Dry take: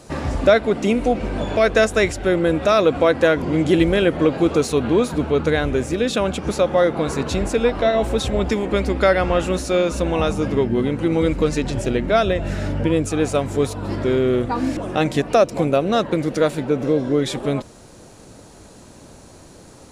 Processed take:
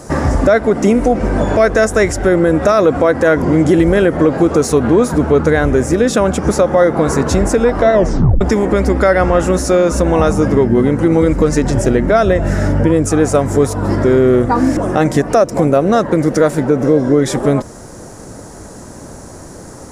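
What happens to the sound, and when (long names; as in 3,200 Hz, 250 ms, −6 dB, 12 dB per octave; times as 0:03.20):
0:07.94: tape stop 0.47 s
whole clip: flat-topped bell 3,200 Hz −10 dB 1.1 octaves; downward compressor 1.5 to 1, threshold −23 dBFS; boost into a limiter +12 dB; level −1 dB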